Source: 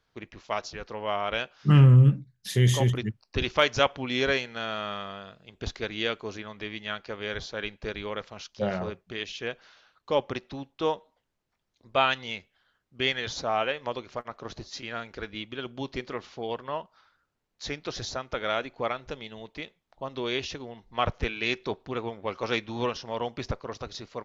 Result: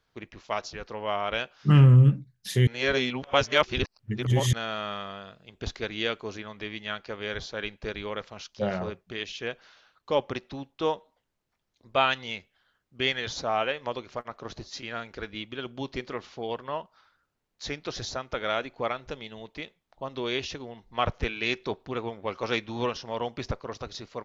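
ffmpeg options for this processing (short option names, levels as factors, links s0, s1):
-filter_complex "[0:a]asplit=3[s0][s1][s2];[s0]atrim=end=2.672[s3];[s1]atrim=start=2.668:end=4.532,asetpts=PTS-STARTPTS,areverse[s4];[s2]atrim=start=4.528[s5];[s3][s4]acrossfade=d=0.004:c1=hsin:c2=hsin[s6];[s6][s5]acrossfade=d=0.004:c1=hsin:c2=hsin"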